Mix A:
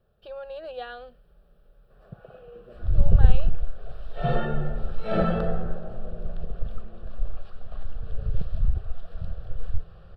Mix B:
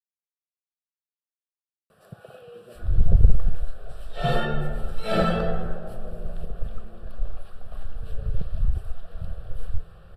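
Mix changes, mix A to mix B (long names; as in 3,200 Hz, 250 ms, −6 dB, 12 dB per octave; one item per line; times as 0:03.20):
speech: muted
first sound: remove head-to-tape spacing loss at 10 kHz 29 dB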